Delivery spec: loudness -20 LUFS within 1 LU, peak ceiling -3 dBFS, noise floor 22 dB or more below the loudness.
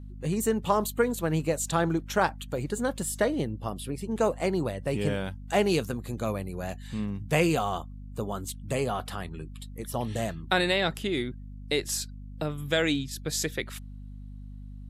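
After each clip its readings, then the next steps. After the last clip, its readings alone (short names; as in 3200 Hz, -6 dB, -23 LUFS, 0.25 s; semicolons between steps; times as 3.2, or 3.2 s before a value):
hum 50 Hz; harmonics up to 250 Hz; hum level -40 dBFS; loudness -29.0 LUFS; peak -9.5 dBFS; loudness target -20.0 LUFS
-> notches 50/100/150/200/250 Hz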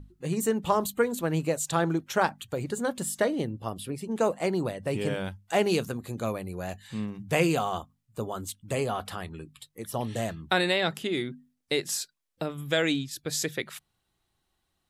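hum none; loudness -29.5 LUFS; peak -9.0 dBFS; loudness target -20.0 LUFS
-> gain +9.5 dB; limiter -3 dBFS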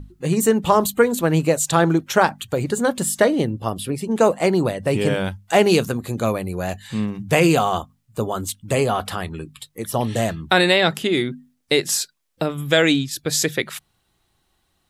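loudness -20.0 LUFS; peak -3.0 dBFS; noise floor -68 dBFS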